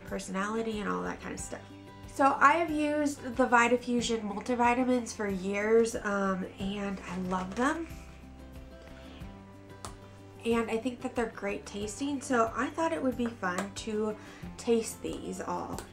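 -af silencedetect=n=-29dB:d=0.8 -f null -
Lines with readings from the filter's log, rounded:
silence_start: 7.81
silence_end: 9.85 | silence_duration: 2.03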